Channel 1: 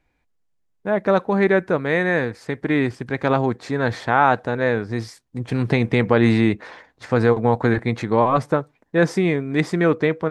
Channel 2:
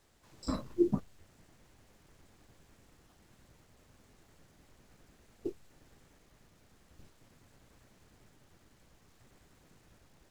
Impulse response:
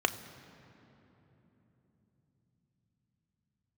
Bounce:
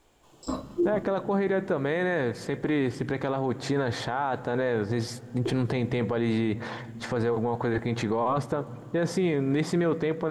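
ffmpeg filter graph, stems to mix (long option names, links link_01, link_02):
-filter_complex "[0:a]acompressor=threshold=-23dB:ratio=3,volume=2.5dB,asplit=2[link_01][link_02];[link_02]volume=-19dB[link_03];[1:a]volume=-3dB,asplit=2[link_04][link_05];[link_05]volume=-3.5dB[link_06];[2:a]atrim=start_sample=2205[link_07];[link_03][link_06]amix=inputs=2:normalize=0[link_08];[link_08][link_07]afir=irnorm=-1:irlink=0[link_09];[link_01][link_04][link_09]amix=inputs=3:normalize=0,alimiter=limit=-17.5dB:level=0:latency=1:release=11"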